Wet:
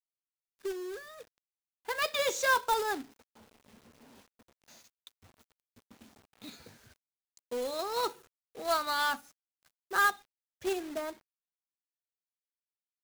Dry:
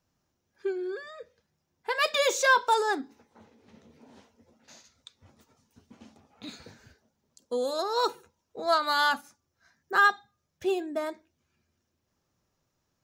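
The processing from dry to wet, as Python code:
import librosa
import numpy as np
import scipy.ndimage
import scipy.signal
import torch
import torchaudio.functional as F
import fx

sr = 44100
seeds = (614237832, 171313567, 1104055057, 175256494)

y = fx.quant_companded(x, sr, bits=4)
y = F.gain(torch.from_numpy(y), -5.5).numpy()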